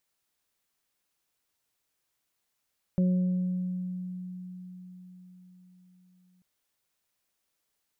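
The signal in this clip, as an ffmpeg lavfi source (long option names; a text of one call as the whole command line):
ffmpeg -f lavfi -i "aevalsrc='0.0944*pow(10,-3*t/4.94)*sin(2*PI*182*t)+0.0141*pow(10,-3*t/1.18)*sin(2*PI*364*t)+0.0188*pow(10,-3*t/1.63)*sin(2*PI*546*t)':duration=3.44:sample_rate=44100" out.wav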